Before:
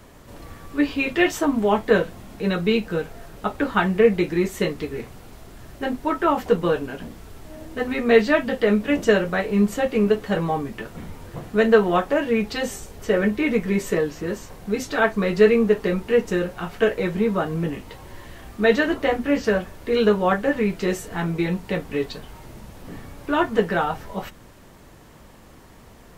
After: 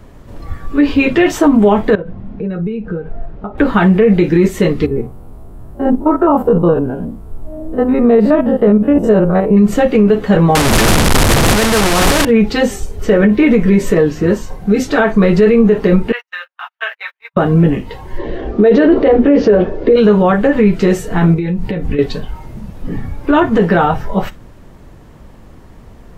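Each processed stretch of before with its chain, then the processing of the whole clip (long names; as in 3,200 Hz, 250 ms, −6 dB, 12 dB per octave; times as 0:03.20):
0:01.95–0:03.58: downward compressor 10 to 1, threshold −30 dBFS + head-to-tape spacing loss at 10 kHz 32 dB
0:04.86–0:09.57: spectrum averaged block by block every 50 ms + flat-topped bell 3,300 Hz −11.5 dB 2.4 octaves
0:10.55–0:12.25: linear delta modulator 64 kbit/s, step −14.5 dBFS + every bin compressed towards the loudest bin 2 to 1
0:16.12–0:17.37: Bessel high-pass filter 1,400 Hz, order 6 + parametric band 8,200 Hz −14 dB 0.71 octaves + noise gate −40 dBFS, range −44 dB
0:18.18–0:19.96: low-pass filter 5,700 Hz 24 dB per octave + parametric band 420 Hz +13.5 dB 1.2 octaves
0:21.34–0:21.99: downward compressor 10 to 1, threshold −30 dBFS + low-shelf EQ 140 Hz +5.5 dB
whole clip: noise reduction from a noise print of the clip's start 8 dB; spectral tilt −2 dB per octave; boost into a limiter +12.5 dB; level −1 dB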